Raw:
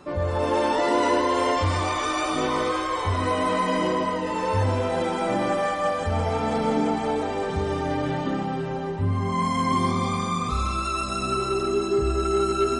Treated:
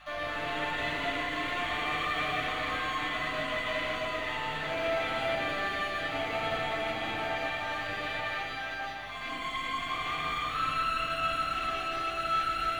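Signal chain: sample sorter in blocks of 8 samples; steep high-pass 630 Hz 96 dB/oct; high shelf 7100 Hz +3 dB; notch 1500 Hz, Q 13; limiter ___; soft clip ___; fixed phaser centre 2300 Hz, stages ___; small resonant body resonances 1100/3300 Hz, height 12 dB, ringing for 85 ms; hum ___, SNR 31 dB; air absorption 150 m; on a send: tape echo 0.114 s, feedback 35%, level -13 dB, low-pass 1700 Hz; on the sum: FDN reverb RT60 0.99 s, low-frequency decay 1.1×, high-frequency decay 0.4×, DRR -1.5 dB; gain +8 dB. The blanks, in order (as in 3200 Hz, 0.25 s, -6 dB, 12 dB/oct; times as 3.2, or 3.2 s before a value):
-15 dBFS, -31.5 dBFS, 4, 50 Hz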